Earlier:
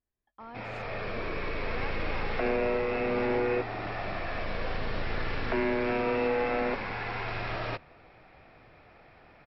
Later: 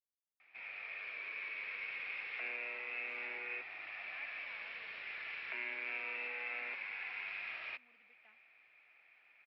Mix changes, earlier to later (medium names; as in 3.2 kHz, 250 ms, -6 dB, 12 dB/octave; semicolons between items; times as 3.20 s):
speech: entry +2.35 s; master: add band-pass filter 2.4 kHz, Q 4.4